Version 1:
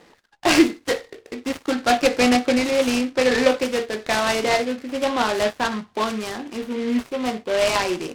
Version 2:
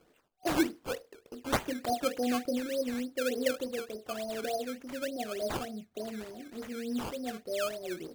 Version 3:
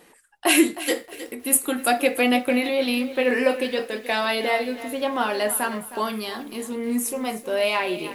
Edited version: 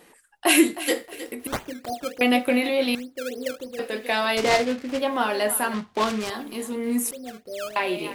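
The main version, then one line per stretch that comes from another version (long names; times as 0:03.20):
3
0:01.47–0:02.21: punch in from 2
0:02.95–0:03.79: punch in from 2
0:04.37–0:04.99: punch in from 1
0:05.74–0:06.30: punch in from 1
0:07.11–0:07.76: punch in from 2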